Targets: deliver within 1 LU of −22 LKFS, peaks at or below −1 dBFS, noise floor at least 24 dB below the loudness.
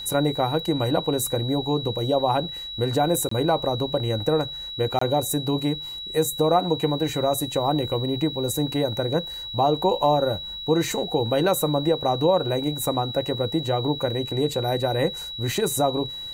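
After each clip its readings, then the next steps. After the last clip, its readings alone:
number of dropouts 2; longest dropout 24 ms; interfering tone 3,900 Hz; level of the tone −32 dBFS; integrated loudness −24.0 LKFS; sample peak −8.5 dBFS; target loudness −22.0 LKFS
→ repair the gap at 0:03.29/0:04.99, 24 ms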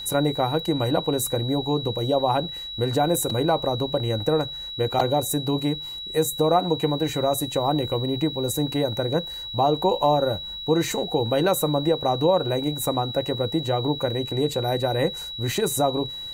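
number of dropouts 0; interfering tone 3,900 Hz; level of the tone −32 dBFS
→ notch filter 3,900 Hz, Q 30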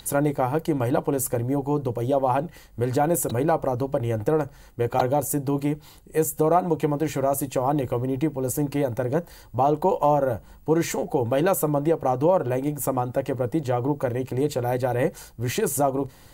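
interfering tone none found; integrated loudness −24.5 LKFS; sample peak −8.0 dBFS; target loudness −22.0 LKFS
→ level +2.5 dB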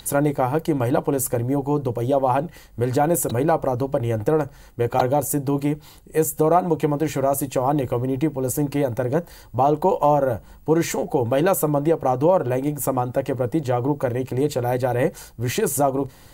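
integrated loudness −22.0 LKFS; sample peak −5.5 dBFS; background noise floor −47 dBFS

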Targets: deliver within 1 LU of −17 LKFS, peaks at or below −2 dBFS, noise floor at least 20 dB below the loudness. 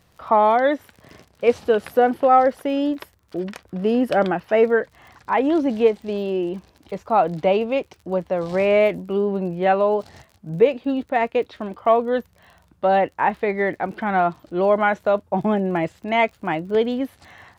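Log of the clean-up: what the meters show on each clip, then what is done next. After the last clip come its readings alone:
crackle rate 31 per second; integrated loudness −21.0 LKFS; sample peak −4.5 dBFS; target loudness −17.0 LKFS
→ click removal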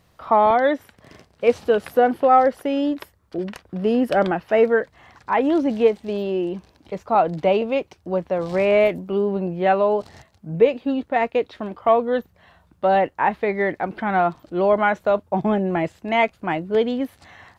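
crackle rate 0 per second; integrated loudness −21.0 LKFS; sample peak −4.5 dBFS; target loudness −17.0 LKFS
→ level +4 dB
brickwall limiter −2 dBFS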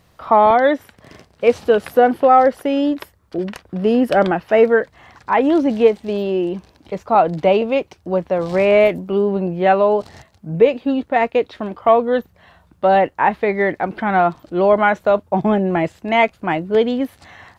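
integrated loudness −17.0 LKFS; sample peak −2.0 dBFS; background noise floor −56 dBFS

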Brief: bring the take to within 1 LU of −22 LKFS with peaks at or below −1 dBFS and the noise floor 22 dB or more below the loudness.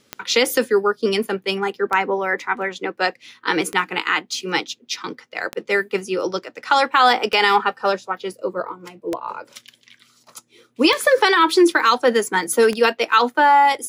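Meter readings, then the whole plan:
number of clicks 8; integrated loudness −19.0 LKFS; sample peak −3.0 dBFS; target loudness −22.0 LKFS
→ click removal
level −3 dB

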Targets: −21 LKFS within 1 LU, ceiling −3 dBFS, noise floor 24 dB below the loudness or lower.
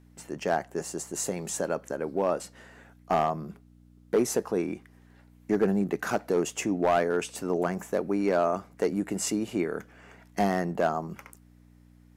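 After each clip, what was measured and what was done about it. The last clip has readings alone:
share of clipped samples 0.5%; peaks flattened at −16.5 dBFS; mains hum 60 Hz; hum harmonics up to 300 Hz; level of the hum −50 dBFS; integrated loudness −29.0 LKFS; sample peak −16.5 dBFS; target loudness −21.0 LKFS
→ clipped peaks rebuilt −16.5 dBFS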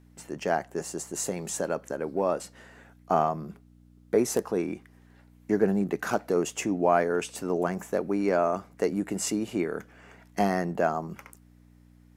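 share of clipped samples 0.0%; mains hum 60 Hz; hum harmonics up to 120 Hz; level of the hum −55 dBFS
→ hum removal 60 Hz, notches 2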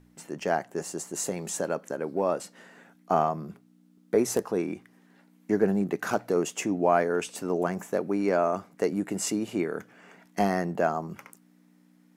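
mains hum none found; integrated loudness −28.5 LKFS; sample peak −9.5 dBFS; target loudness −21.0 LKFS
→ level +7.5 dB
brickwall limiter −3 dBFS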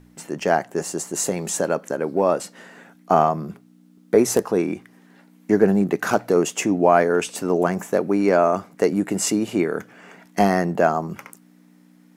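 integrated loudness −21.0 LKFS; sample peak −3.0 dBFS; background noise floor −53 dBFS

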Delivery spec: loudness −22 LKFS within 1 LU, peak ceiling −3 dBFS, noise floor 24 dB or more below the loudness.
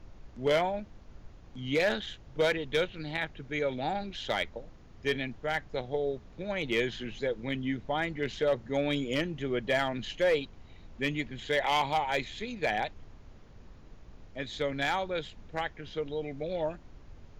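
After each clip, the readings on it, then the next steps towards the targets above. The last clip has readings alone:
share of clipped samples 0.4%; peaks flattened at −20.0 dBFS; background noise floor −52 dBFS; target noise floor −56 dBFS; integrated loudness −32.0 LKFS; sample peak −20.0 dBFS; target loudness −22.0 LKFS
→ clipped peaks rebuilt −20 dBFS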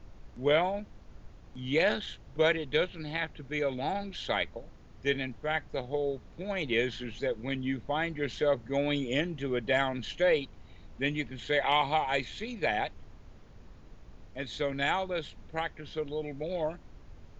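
share of clipped samples 0.0%; background noise floor −52 dBFS; target noise floor −56 dBFS
→ noise reduction from a noise print 6 dB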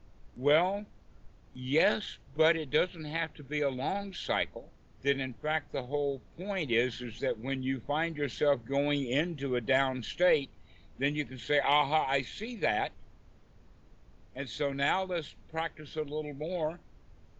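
background noise floor −58 dBFS; integrated loudness −31.5 LKFS; sample peak −13.0 dBFS; target loudness −22.0 LKFS
→ level +9.5 dB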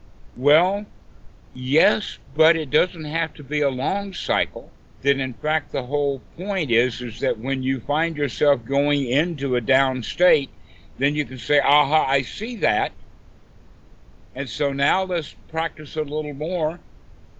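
integrated loudness −22.0 LKFS; sample peak −3.5 dBFS; background noise floor −48 dBFS

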